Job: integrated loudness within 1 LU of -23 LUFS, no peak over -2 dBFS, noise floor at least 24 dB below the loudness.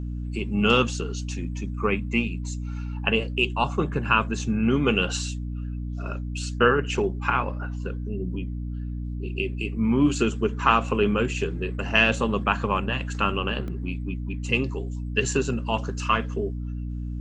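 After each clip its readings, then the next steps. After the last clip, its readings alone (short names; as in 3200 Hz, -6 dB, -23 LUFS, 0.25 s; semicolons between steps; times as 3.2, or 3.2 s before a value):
dropouts 1; longest dropout 1.1 ms; hum 60 Hz; harmonics up to 300 Hz; hum level -28 dBFS; loudness -25.5 LUFS; peak -4.0 dBFS; loudness target -23.0 LUFS
-> interpolate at 13.68, 1.1 ms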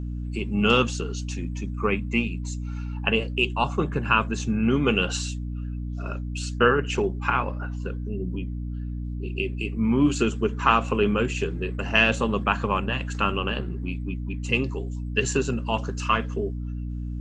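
dropouts 0; hum 60 Hz; harmonics up to 300 Hz; hum level -28 dBFS
-> de-hum 60 Hz, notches 5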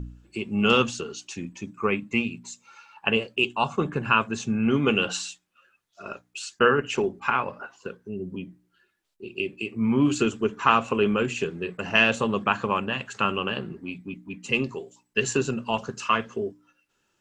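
hum none; loudness -25.0 LUFS; peak -4.5 dBFS; loudness target -23.0 LUFS
-> gain +2 dB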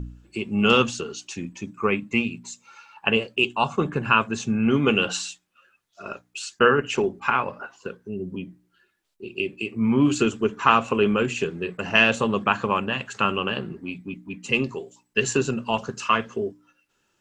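loudness -23.0 LUFS; peak -2.5 dBFS; noise floor -71 dBFS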